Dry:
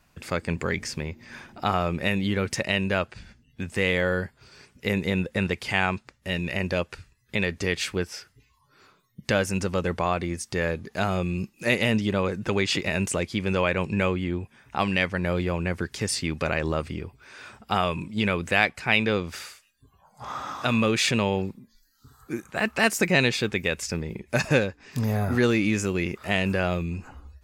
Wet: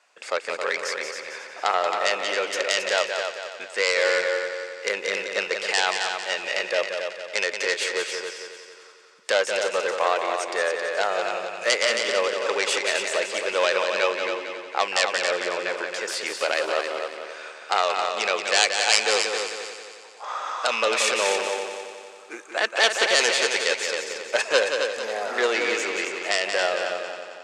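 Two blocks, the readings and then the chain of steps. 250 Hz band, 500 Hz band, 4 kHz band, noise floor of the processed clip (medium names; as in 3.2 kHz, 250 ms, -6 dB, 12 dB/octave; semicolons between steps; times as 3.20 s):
-14.5 dB, +3.5 dB, +6.5 dB, -45 dBFS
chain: self-modulated delay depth 0.27 ms; elliptic band-pass 490–8200 Hz, stop band 70 dB; multi-head delay 90 ms, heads second and third, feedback 48%, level -6.5 dB; trim +4 dB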